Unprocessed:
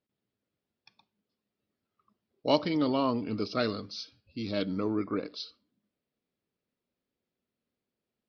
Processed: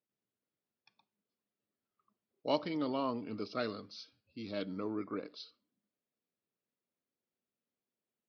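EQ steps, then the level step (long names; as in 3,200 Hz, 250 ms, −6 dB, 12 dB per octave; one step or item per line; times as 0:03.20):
high-pass filter 100 Hz
low-shelf EQ 390 Hz −4.5 dB
high-shelf EQ 3,600 Hz −7 dB
−5.0 dB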